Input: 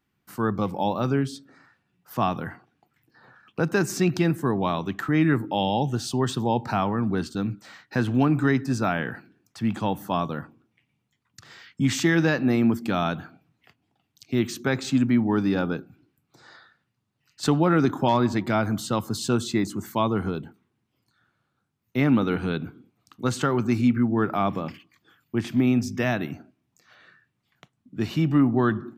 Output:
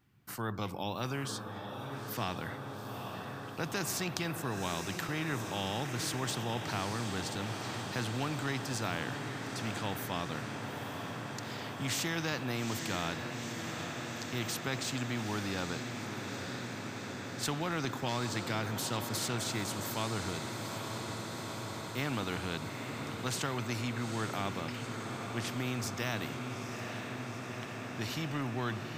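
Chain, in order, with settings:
parametric band 110 Hz +10.5 dB 0.86 octaves
on a send: feedback delay with all-pass diffusion 866 ms, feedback 75%, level −12 dB
on the sum: every bin compressed towards the loudest bin 2 to 1
level −6.5 dB

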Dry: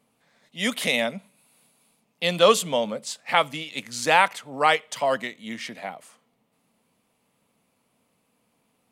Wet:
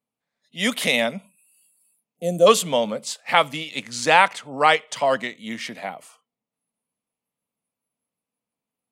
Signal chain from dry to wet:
noise reduction from a noise print of the clip's start 22 dB
0:02.17–0:02.47: gain on a spectral selection 750–5,800 Hz −23 dB
0:03.77–0:05.36: parametric band 13,000 Hz −14 dB 0.35 octaves
level +3 dB

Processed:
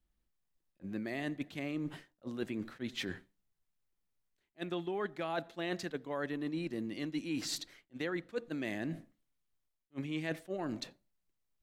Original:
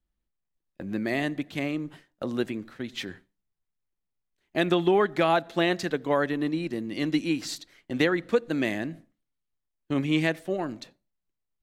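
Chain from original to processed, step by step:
reversed playback
downward compressor 6 to 1, threshold −36 dBFS, peak gain reduction 17.5 dB
reversed playback
level that may rise only so fast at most 540 dB per second
level +1 dB

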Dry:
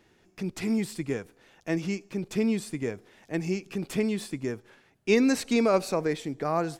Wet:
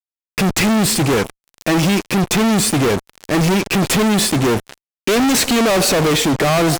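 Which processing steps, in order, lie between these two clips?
tape wow and flutter 17 cents
fuzz pedal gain 50 dB, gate −48 dBFS

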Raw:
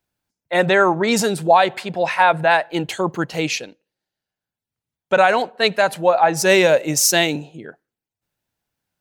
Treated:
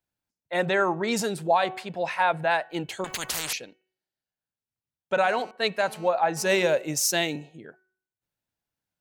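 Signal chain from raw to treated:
hum removal 373.4 Hz, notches 8
0:03.04–0:03.53: every bin compressed towards the loudest bin 10 to 1
0:05.23–0:06.65: phone interference −38 dBFS
level −8.5 dB

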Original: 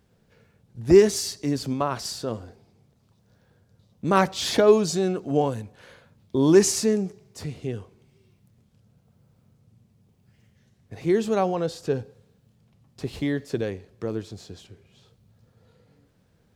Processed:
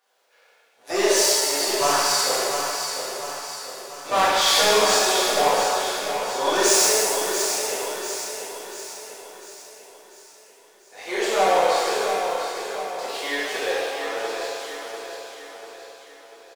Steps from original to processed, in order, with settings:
sub-octave generator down 1 octave, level −2 dB
high-pass filter 600 Hz 24 dB per octave
leveller curve on the samples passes 1
soft clipping −23.5 dBFS, distortion −8 dB
repeating echo 693 ms, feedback 50%, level −7.5 dB
reverb with rising layers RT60 1.8 s, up +7 semitones, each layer −8 dB, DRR −10.5 dB
level −1 dB

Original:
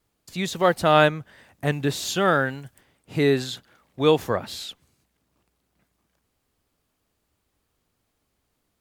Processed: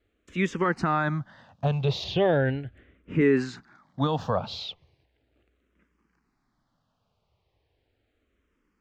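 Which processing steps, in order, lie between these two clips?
0:02.04–0:03.21: bass and treble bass +9 dB, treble −9 dB
brickwall limiter −14 dBFS, peak gain reduction 11.5 dB
high-frequency loss of the air 180 metres
frequency shifter mixed with the dry sound −0.37 Hz
level +5 dB

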